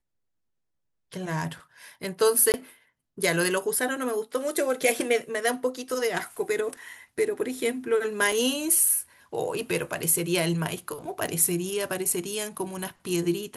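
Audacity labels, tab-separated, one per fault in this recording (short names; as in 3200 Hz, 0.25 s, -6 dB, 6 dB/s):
2.520000	2.540000	gap 19 ms
8.320000	8.320000	gap 2.6 ms
11.270000	11.280000	gap 5 ms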